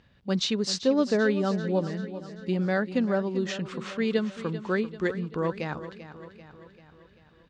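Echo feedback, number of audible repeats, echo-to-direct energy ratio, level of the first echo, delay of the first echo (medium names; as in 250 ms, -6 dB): 55%, 5, -11.5 dB, -13.0 dB, 390 ms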